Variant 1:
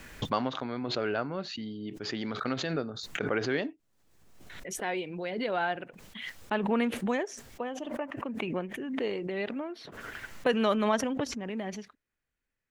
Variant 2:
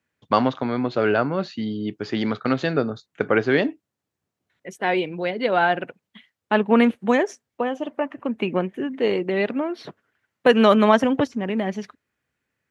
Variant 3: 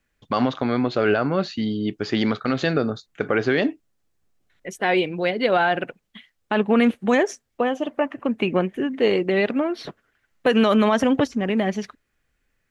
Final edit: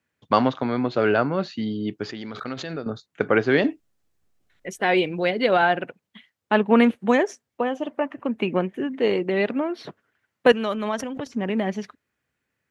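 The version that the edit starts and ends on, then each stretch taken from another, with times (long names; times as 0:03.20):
2
0:02.09–0:02.86: punch in from 1
0:03.64–0:05.62: punch in from 3
0:10.52–0:11.26: punch in from 1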